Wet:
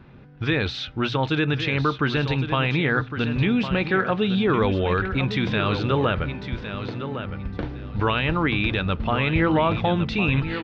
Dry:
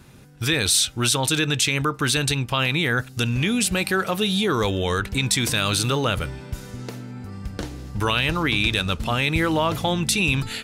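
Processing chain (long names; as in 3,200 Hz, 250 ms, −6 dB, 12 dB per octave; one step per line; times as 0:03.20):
Gaussian smoothing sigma 2.9 samples
mains-hum notches 60/120 Hz
repeating echo 1,109 ms, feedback 18%, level −9.5 dB
level +1.5 dB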